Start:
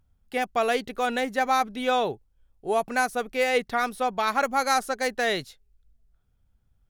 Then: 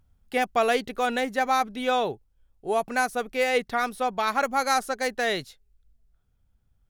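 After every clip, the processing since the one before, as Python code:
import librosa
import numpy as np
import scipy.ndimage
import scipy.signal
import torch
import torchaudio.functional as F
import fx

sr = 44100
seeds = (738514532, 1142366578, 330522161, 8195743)

y = fx.rider(x, sr, range_db=4, speed_s=2.0)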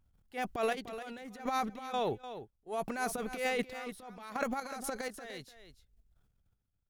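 y = fx.transient(x, sr, attack_db=-10, sustain_db=11)
y = fx.step_gate(y, sr, bpm=62, pattern='xxx...x.x..x', floor_db=-12.0, edge_ms=4.5)
y = y + 10.0 ** (-11.5 / 20.0) * np.pad(y, (int(298 * sr / 1000.0), 0))[:len(y)]
y = y * librosa.db_to_amplitude(-8.5)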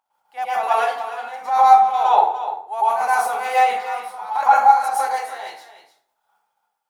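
y = fx.highpass_res(x, sr, hz=840.0, q=7.8)
y = fx.rev_plate(y, sr, seeds[0], rt60_s=0.58, hf_ratio=0.6, predelay_ms=95, drr_db=-9.5)
y = y * librosa.db_to_amplitude(1.0)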